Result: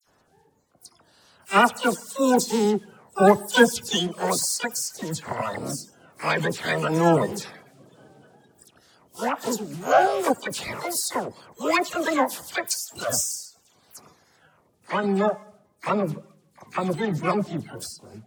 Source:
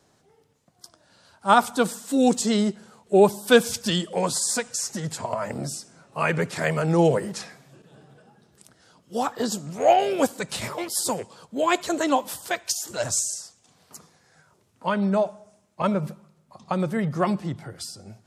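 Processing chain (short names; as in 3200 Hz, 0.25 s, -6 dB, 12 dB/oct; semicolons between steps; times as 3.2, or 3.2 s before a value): bin magnitudes rounded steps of 30 dB; dispersion lows, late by 73 ms, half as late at 2700 Hz; harmoniser +12 st -9 dB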